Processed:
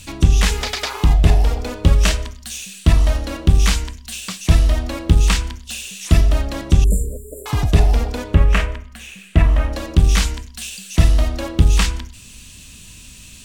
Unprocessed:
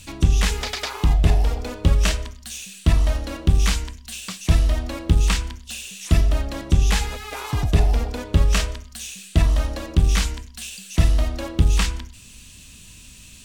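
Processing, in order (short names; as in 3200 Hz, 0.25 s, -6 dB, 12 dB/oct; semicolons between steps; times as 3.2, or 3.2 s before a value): 6.84–7.46 brick-wall FIR band-stop 630–7100 Hz; 8.34–9.73 resonant high shelf 3200 Hz -11 dB, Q 1.5; gain +4 dB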